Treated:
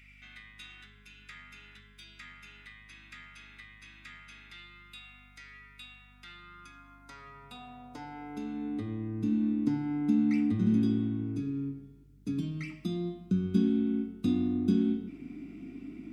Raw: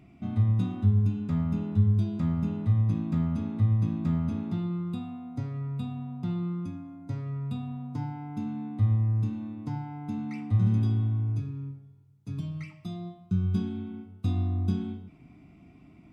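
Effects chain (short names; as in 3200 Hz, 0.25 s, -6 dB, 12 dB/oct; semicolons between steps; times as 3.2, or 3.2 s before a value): band shelf 790 Hz -10 dB 1.3 oct; in parallel at 0 dB: compressor, threshold -37 dBFS, peak gain reduction 18 dB; on the sum: high-pass sweep 2000 Hz -> 260 Hz, 6.07–9.34; hum 50 Hz, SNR 26 dB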